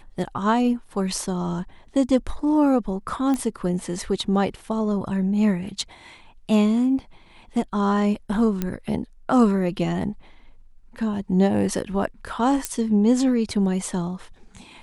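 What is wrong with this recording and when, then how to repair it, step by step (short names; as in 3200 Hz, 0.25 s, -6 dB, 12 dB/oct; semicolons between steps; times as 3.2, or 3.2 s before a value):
3.34 pop -14 dBFS
8.62 pop -11 dBFS
12.65 pop -8 dBFS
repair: de-click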